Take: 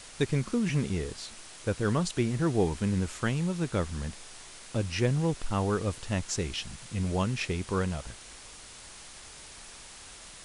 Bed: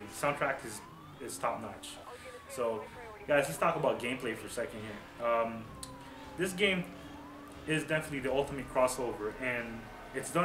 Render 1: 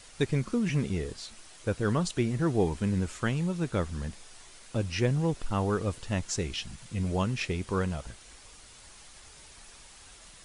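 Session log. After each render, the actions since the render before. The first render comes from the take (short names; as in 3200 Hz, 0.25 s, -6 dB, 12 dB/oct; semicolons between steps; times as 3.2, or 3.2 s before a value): denoiser 6 dB, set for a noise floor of -48 dBFS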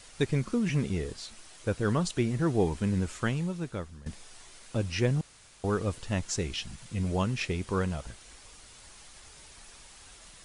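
3.25–4.06 fade out linear, to -16.5 dB; 5.21–5.64 room tone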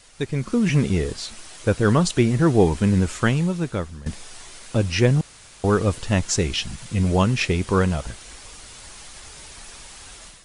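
AGC gain up to 10 dB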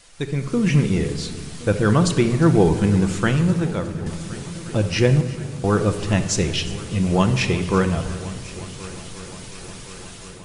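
multi-head echo 0.357 s, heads first and third, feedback 73%, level -20 dB; shoebox room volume 1800 m³, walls mixed, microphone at 0.77 m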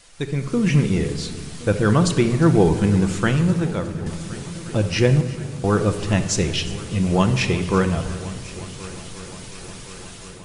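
nothing audible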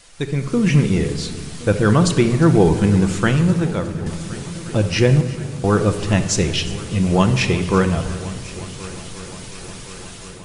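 gain +2.5 dB; limiter -3 dBFS, peak gain reduction 1 dB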